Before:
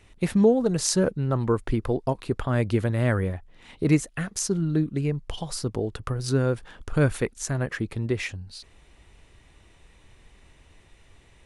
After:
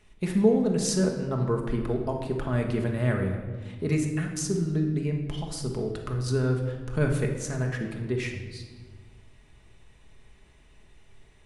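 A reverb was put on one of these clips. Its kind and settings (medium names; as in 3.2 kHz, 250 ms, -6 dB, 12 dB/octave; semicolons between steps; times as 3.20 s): simulated room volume 1300 m³, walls mixed, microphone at 1.4 m; trim -5.5 dB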